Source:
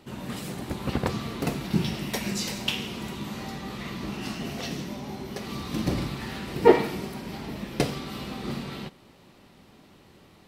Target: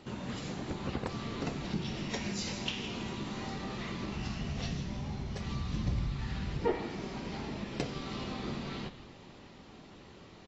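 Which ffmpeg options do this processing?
ffmpeg -i in.wav -filter_complex "[0:a]asplit=3[link_01][link_02][link_03];[link_01]afade=type=out:start_time=4.13:duration=0.02[link_04];[link_02]asubboost=boost=9:cutoff=110,afade=type=in:start_time=4.13:duration=0.02,afade=type=out:start_time=6.59:duration=0.02[link_05];[link_03]afade=type=in:start_time=6.59:duration=0.02[link_06];[link_04][link_05][link_06]amix=inputs=3:normalize=0,acompressor=threshold=-40dB:ratio=2,asplit=5[link_07][link_08][link_09][link_10][link_11];[link_08]adelay=162,afreqshift=-120,volume=-14.5dB[link_12];[link_09]adelay=324,afreqshift=-240,volume=-20.9dB[link_13];[link_10]adelay=486,afreqshift=-360,volume=-27.3dB[link_14];[link_11]adelay=648,afreqshift=-480,volume=-33.6dB[link_15];[link_07][link_12][link_13][link_14][link_15]amix=inputs=5:normalize=0" -ar 22050 -c:a aac -b:a 24k out.aac

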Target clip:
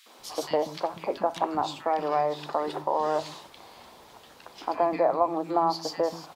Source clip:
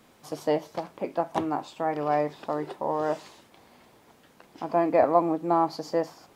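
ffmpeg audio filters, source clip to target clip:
ffmpeg -i in.wav -filter_complex "[0:a]equalizer=frequency=125:width_type=o:width=1:gain=-4,equalizer=frequency=250:width_type=o:width=1:gain=-3,equalizer=frequency=1000:width_type=o:width=1:gain=4,equalizer=frequency=4000:width_type=o:width=1:gain=6,acompressor=threshold=-29dB:ratio=2.5,acrossover=split=240|1800[link_01][link_02][link_03];[link_02]adelay=60[link_04];[link_01]adelay=190[link_05];[link_05][link_04][link_03]amix=inputs=3:normalize=0,volume=5.5dB" out.wav

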